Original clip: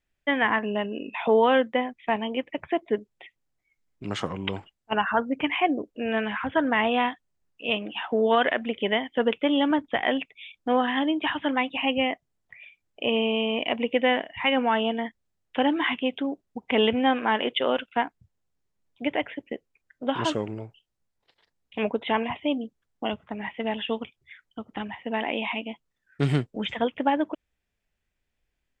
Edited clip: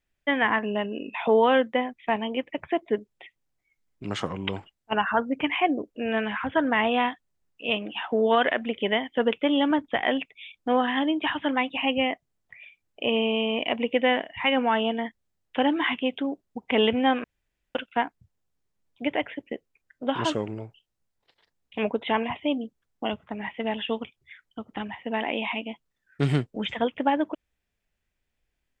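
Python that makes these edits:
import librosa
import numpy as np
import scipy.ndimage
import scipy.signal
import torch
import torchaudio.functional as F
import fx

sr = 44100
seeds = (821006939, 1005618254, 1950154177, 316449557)

y = fx.edit(x, sr, fx.room_tone_fill(start_s=17.24, length_s=0.51), tone=tone)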